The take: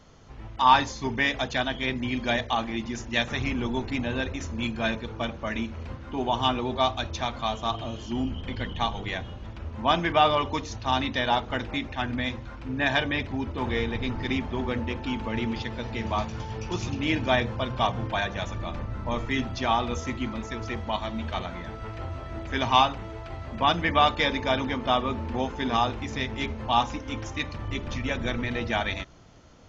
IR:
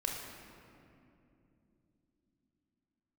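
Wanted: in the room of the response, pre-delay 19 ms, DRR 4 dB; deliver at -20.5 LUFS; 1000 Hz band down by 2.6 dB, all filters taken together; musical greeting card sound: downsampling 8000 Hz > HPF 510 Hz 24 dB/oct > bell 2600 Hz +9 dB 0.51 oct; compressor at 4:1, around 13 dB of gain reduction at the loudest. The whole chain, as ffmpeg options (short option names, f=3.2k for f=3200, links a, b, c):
-filter_complex "[0:a]equalizer=f=1k:t=o:g=-3.5,acompressor=threshold=-32dB:ratio=4,asplit=2[a][b];[1:a]atrim=start_sample=2205,adelay=19[c];[b][c]afir=irnorm=-1:irlink=0,volume=-7dB[d];[a][d]amix=inputs=2:normalize=0,aresample=8000,aresample=44100,highpass=f=510:w=0.5412,highpass=f=510:w=1.3066,equalizer=f=2.6k:t=o:w=0.51:g=9,volume=14dB"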